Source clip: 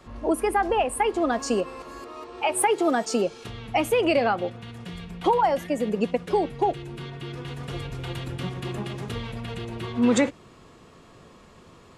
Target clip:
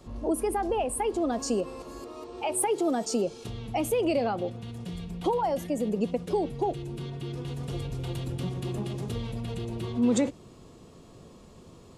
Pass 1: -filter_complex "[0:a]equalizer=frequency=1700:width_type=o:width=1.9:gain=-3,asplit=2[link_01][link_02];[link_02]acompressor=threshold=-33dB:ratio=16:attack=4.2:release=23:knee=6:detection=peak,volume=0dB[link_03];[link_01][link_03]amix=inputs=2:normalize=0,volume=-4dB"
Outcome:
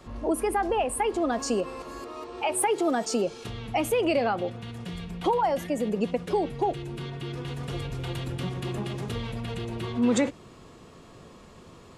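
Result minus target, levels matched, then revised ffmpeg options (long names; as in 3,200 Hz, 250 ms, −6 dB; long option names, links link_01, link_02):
2,000 Hz band +5.5 dB
-filter_complex "[0:a]equalizer=frequency=1700:width_type=o:width=1.9:gain=-12,asplit=2[link_01][link_02];[link_02]acompressor=threshold=-33dB:ratio=16:attack=4.2:release=23:knee=6:detection=peak,volume=0dB[link_03];[link_01][link_03]amix=inputs=2:normalize=0,volume=-4dB"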